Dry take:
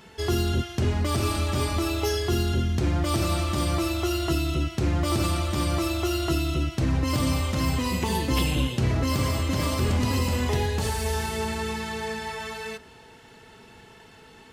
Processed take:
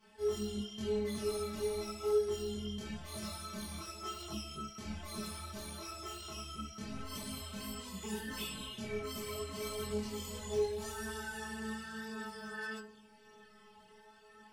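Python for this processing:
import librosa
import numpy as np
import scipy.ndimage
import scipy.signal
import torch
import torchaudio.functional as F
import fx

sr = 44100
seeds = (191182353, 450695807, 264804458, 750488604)

y = fx.stiff_resonator(x, sr, f0_hz=210.0, decay_s=0.54, stiffness=0.002)
y = fx.chorus_voices(y, sr, voices=4, hz=0.89, base_ms=24, depth_ms=2.7, mix_pct=55)
y = y * 10.0 ** (6.5 / 20.0)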